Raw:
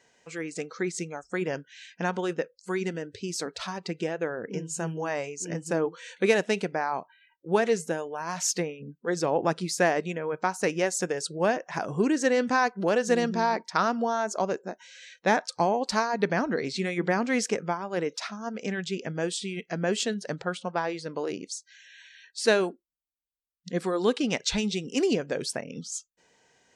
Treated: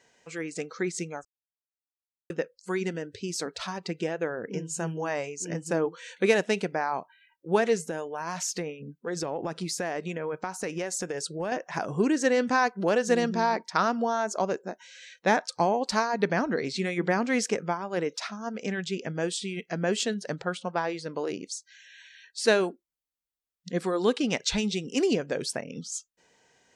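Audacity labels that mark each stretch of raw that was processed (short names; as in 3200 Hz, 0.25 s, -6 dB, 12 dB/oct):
1.250000	2.300000	mute
7.840000	11.520000	compressor, threshold -27 dBFS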